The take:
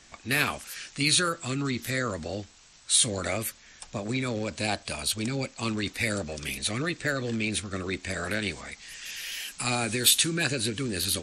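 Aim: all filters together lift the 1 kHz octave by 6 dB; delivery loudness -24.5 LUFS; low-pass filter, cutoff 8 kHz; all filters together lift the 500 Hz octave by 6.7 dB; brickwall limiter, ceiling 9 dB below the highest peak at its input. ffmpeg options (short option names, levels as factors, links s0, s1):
-af "lowpass=8000,equalizer=f=500:t=o:g=6.5,equalizer=f=1000:t=o:g=6.5,volume=1.58,alimiter=limit=0.237:level=0:latency=1"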